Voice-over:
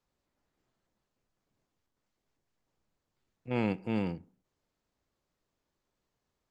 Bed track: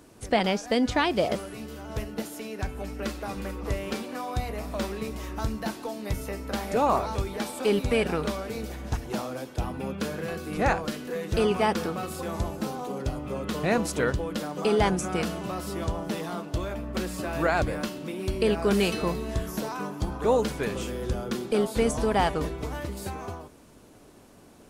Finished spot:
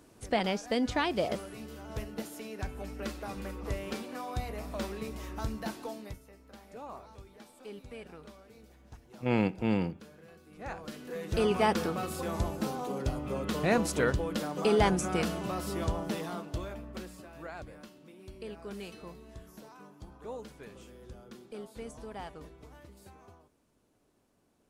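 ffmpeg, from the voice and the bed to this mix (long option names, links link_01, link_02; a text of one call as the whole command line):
ffmpeg -i stem1.wav -i stem2.wav -filter_complex "[0:a]adelay=5750,volume=3dB[link_01];[1:a]volume=14dB,afade=type=out:start_time=5.92:duration=0.27:silence=0.158489,afade=type=in:start_time=10.59:duration=1.07:silence=0.105925,afade=type=out:start_time=15.91:duration=1.38:silence=0.141254[link_02];[link_01][link_02]amix=inputs=2:normalize=0" out.wav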